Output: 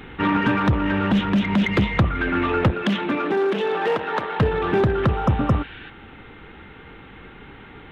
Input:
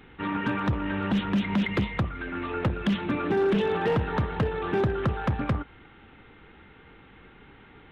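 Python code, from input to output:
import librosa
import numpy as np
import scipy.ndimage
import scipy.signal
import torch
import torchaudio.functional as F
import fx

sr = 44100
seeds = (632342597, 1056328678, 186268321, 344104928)

p1 = 10.0 ** (-27.0 / 20.0) * np.tanh(x / 10.0 ** (-27.0 / 20.0))
p2 = x + (p1 * librosa.db_to_amplitude(-5.0))
p3 = fx.rider(p2, sr, range_db=10, speed_s=0.5)
p4 = fx.highpass(p3, sr, hz=fx.line((2.7, 200.0), (4.39, 480.0)), slope=12, at=(2.7, 4.39), fade=0.02)
p5 = fx.spec_repair(p4, sr, seeds[0], start_s=5.18, length_s=0.69, low_hz=1400.0, high_hz=4900.0, source='before')
y = p5 * librosa.db_to_amplitude(4.5)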